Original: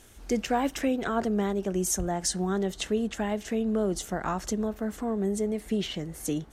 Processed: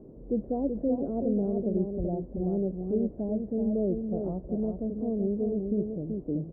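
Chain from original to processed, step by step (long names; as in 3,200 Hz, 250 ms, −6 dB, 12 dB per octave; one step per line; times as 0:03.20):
transient designer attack −2 dB, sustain +2 dB
Chebyshev low-pass filter 600 Hz, order 4
on a send: single-tap delay 380 ms −5.5 dB
on the sum: noise in a band 110–470 Hz −50 dBFS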